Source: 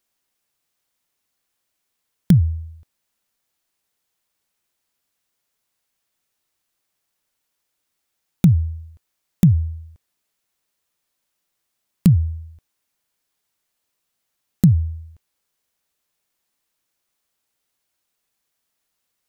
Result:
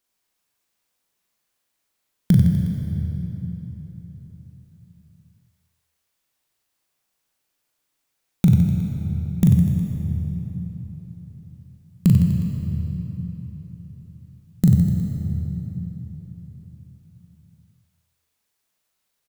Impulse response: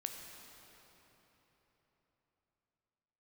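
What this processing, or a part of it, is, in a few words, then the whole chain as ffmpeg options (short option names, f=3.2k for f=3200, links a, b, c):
cathedral: -filter_complex "[1:a]atrim=start_sample=2205[a];[0:a][a]afir=irnorm=-1:irlink=0,aecho=1:1:40|92|159.6|247.5|361.7:0.631|0.398|0.251|0.158|0.1"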